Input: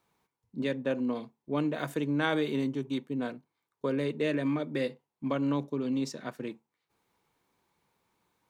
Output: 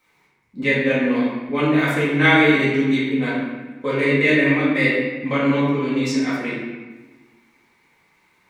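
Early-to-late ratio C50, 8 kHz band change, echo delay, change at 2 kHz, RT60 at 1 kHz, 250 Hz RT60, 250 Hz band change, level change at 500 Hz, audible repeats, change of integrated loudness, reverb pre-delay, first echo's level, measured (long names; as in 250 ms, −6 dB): −1.0 dB, can't be measured, no echo audible, +20.0 dB, 1.3 s, 1.6 s, +12.0 dB, +11.5 dB, no echo audible, +13.5 dB, 4 ms, no echo audible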